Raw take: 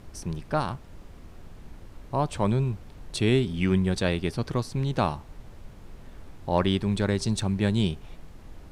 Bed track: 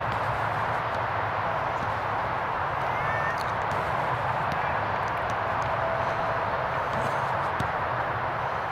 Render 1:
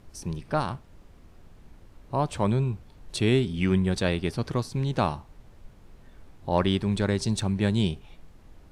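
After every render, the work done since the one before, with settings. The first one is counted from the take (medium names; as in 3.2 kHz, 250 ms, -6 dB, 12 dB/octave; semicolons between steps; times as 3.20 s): noise print and reduce 6 dB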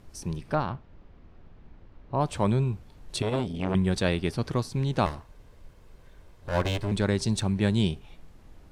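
0.55–2.21 s: distance through air 210 m; 3.22–3.75 s: transformer saturation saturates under 750 Hz; 5.06–6.92 s: comb filter that takes the minimum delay 1.9 ms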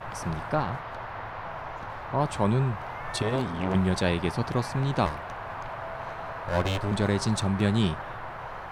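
add bed track -9.5 dB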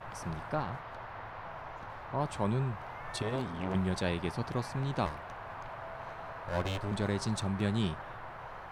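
trim -7 dB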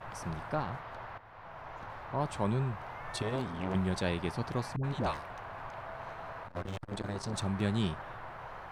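1.18–1.80 s: fade in, from -13.5 dB; 4.76–5.90 s: phase dispersion highs, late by 79 ms, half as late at 560 Hz; 6.42–7.34 s: transformer saturation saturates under 730 Hz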